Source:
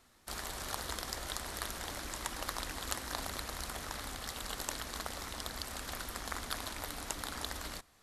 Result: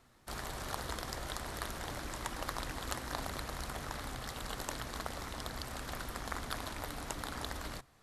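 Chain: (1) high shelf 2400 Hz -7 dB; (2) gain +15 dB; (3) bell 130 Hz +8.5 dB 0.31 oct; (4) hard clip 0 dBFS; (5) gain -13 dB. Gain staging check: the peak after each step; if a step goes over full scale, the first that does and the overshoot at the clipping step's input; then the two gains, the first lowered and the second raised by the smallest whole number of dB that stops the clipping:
-18.0, -3.0, -3.0, -3.0, -16.0 dBFS; no overload

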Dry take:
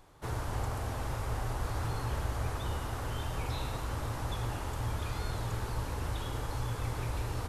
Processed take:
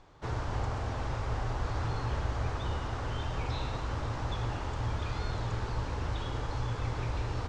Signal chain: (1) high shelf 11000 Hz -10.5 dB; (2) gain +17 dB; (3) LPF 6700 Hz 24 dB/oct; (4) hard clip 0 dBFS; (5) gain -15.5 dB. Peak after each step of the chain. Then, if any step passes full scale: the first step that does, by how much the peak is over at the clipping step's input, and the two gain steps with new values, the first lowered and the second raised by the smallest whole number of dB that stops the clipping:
-22.0, -5.0, -5.0, -5.0, -20.5 dBFS; no overload

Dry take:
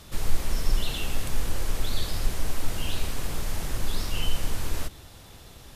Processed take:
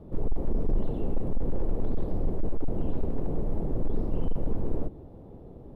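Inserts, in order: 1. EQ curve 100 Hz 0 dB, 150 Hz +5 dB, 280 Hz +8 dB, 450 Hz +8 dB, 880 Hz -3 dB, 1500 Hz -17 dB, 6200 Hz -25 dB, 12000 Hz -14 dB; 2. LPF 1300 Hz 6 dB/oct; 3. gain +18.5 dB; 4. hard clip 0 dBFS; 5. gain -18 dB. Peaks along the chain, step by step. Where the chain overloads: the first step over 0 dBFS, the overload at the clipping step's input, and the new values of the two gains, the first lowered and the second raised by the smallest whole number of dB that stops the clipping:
-8.5, -8.5, +10.0, 0.0, -18.0 dBFS; step 3, 10.0 dB; step 3 +8.5 dB, step 5 -8 dB

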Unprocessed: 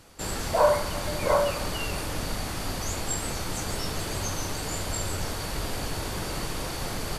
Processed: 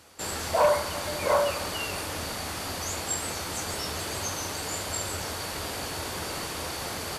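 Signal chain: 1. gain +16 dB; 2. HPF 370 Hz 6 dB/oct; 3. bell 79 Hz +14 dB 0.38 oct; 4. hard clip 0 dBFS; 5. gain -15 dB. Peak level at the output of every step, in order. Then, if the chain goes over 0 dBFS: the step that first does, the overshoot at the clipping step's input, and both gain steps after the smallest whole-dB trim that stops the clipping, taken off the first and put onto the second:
+8.0, +7.0, +7.0, 0.0, -15.0 dBFS; step 1, 7.0 dB; step 1 +9 dB, step 5 -8 dB

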